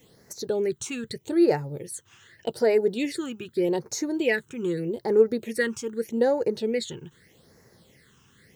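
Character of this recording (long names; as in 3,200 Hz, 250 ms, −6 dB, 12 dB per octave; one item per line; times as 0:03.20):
phaser sweep stages 8, 0.82 Hz, lowest notch 570–3,200 Hz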